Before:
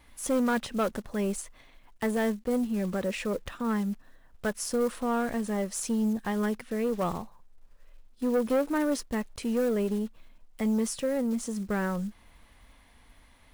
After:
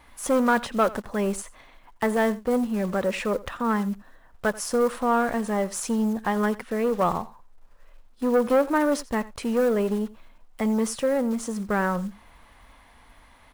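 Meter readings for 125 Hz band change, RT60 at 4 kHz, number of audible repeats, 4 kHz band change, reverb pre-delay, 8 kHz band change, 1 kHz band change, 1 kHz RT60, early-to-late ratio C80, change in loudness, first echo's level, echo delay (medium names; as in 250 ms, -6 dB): +2.5 dB, no reverb, 1, +3.0 dB, no reverb, +2.5 dB, +9.0 dB, no reverb, no reverb, +4.5 dB, -19.5 dB, 86 ms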